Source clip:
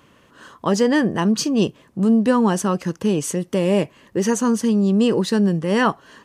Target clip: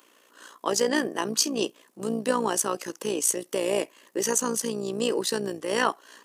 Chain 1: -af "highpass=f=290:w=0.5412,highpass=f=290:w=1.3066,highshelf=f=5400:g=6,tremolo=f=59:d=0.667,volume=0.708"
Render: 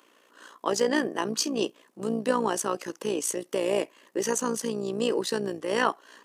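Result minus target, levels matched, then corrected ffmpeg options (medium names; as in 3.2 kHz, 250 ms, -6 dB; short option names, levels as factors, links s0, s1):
8 kHz band -4.0 dB
-af "highpass=f=290:w=0.5412,highpass=f=290:w=1.3066,highshelf=f=5400:g=14.5,tremolo=f=59:d=0.667,volume=0.708"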